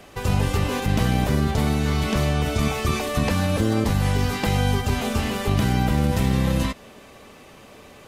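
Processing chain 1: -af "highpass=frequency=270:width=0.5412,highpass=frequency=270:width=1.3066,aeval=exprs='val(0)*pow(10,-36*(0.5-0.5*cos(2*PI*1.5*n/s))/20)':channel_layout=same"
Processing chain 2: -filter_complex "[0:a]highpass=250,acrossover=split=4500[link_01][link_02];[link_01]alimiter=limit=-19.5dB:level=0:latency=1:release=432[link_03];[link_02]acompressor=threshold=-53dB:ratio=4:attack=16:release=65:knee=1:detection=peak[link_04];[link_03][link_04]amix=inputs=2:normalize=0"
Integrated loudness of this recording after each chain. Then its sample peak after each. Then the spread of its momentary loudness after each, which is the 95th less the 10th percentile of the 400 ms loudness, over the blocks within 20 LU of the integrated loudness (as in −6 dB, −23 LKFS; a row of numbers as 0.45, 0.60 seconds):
−33.5, −30.5 LKFS; −12.0, −17.5 dBFS; 17, 16 LU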